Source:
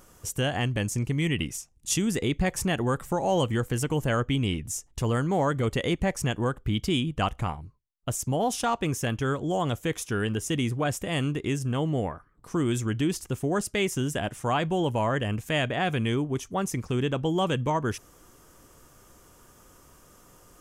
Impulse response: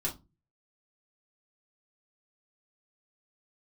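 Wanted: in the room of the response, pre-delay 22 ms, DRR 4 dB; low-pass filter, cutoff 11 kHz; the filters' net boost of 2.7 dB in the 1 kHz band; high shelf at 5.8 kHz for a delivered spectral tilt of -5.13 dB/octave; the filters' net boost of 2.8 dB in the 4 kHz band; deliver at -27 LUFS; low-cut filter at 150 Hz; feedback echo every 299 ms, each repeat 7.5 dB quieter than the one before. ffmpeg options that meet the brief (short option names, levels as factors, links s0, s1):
-filter_complex "[0:a]highpass=150,lowpass=11000,equalizer=f=1000:t=o:g=3.5,equalizer=f=4000:t=o:g=5.5,highshelf=f=5800:g=-5,aecho=1:1:299|598|897|1196|1495:0.422|0.177|0.0744|0.0312|0.0131,asplit=2[s0][s1];[1:a]atrim=start_sample=2205,adelay=22[s2];[s1][s2]afir=irnorm=-1:irlink=0,volume=0.422[s3];[s0][s3]amix=inputs=2:normalize=0,volume=0.75"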